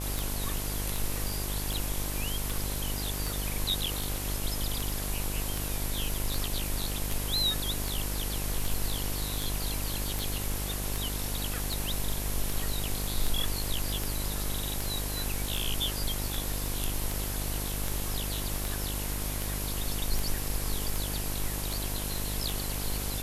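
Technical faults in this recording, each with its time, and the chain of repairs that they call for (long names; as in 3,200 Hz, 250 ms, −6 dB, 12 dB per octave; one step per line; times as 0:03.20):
mains buzz 50 Hz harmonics 22 −35 dBFS
scratch tick 78 rpm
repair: click removal
hum removal 50 Hz, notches 22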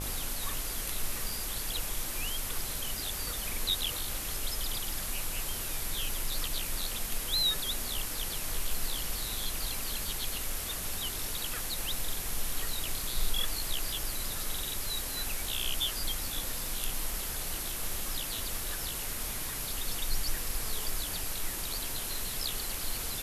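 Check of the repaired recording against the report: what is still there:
none of them is left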